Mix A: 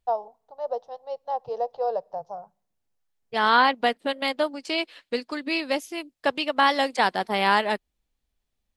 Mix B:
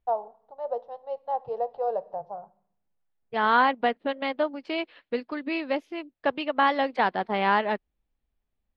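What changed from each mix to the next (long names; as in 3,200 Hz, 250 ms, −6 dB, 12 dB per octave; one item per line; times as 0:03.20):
first voice: send +11.5 dB
master: add high-frequency loss of the air 370 metres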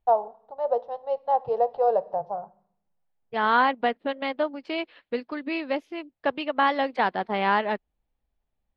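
first voice +6.0 dB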